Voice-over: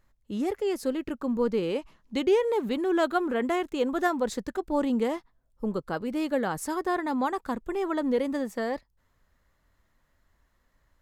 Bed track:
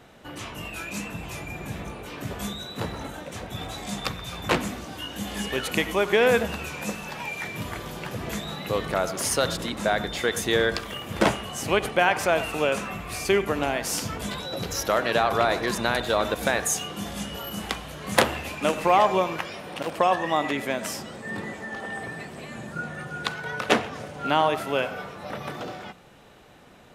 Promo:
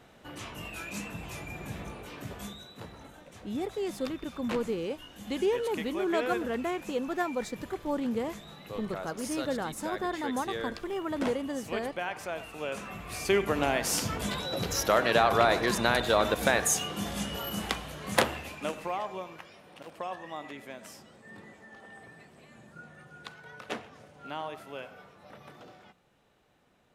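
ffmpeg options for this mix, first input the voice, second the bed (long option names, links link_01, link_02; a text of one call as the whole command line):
ffmpeg -i stem1.wav -i stem2.wav -filter_complex "[0:a]adelay=3150,volume=-5dB[link_01];[1:a]volume=8dB,afade=type=out:start_time=1.96:duration=0.83:silence=0.354813,afade=type=in:start_time=12.55:duration=1.21:silence=0.223872,afade=type=out:start_time=17.55:duration=1.44:silence=0.177828[link_02];[link_01][link_02]amix=inputs=2:normalize=0" out.wav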